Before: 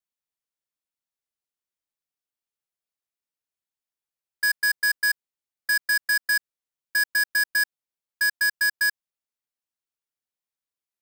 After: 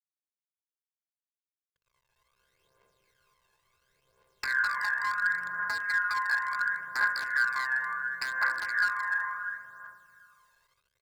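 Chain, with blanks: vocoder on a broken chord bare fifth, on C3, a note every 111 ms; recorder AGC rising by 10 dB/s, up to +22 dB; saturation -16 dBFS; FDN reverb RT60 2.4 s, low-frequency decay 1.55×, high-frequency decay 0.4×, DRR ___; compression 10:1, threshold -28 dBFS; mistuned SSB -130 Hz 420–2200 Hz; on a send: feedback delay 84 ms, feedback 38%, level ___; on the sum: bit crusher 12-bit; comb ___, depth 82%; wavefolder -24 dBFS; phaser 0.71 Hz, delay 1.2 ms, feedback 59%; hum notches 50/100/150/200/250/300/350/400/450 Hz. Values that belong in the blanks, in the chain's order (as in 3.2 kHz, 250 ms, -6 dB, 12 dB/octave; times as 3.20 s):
-3.5 dB, -16.5 dB, 1.9 ms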